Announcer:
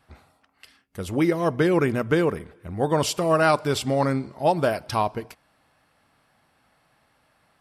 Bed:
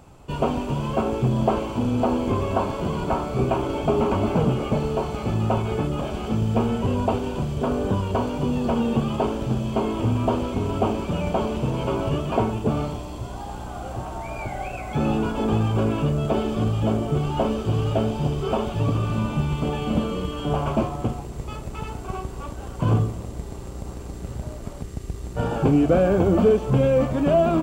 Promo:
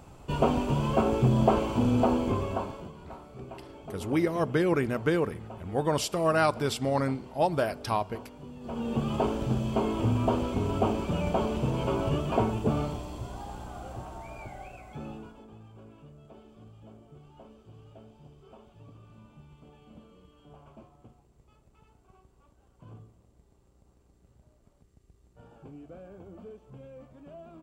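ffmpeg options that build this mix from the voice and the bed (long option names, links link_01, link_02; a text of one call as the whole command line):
ffmpeg -i stem1.wav -i stem2.wav -filter_complex "[0:a]adelay=2950,volume=-5dB[link_01];[1:a]volume=15.5dB,afade=type=out:start_time=1.95:duration=0.98:silence=0.105925,afade=type=in:start_time=8.6:duration=0.57:silence=0.141254,afade=type=out:start_time=12.74:duration=2.73:silence=0.0562341[link_02];[link_01][link_02]amix=inputs=2:normalize=0" out.wav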